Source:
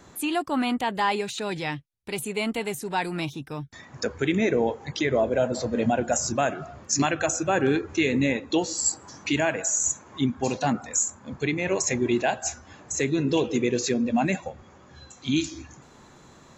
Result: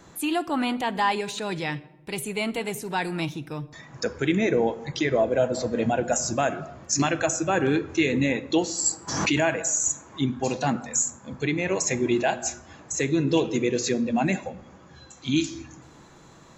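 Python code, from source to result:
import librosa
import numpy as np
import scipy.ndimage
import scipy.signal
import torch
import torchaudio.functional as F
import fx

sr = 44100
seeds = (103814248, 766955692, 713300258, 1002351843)

y = fx.room_shoebox(x, sr, seeds[0], volume_m3=3500.0, walls='furnished', distance_m=0.68)
y = fx.pre_swell(y, sr, db_per_s=41.0, at=(9.07, 9.57), fade=0.02)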